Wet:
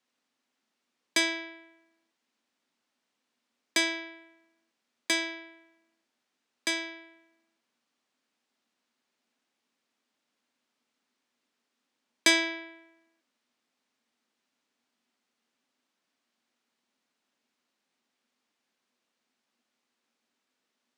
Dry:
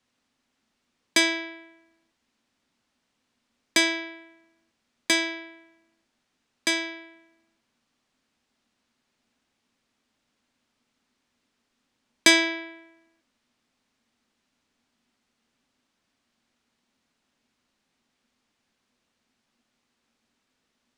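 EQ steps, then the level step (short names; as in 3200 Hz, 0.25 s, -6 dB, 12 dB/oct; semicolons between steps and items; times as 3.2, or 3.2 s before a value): HPF 250 Hz 12 dB/oct; -5.0 dB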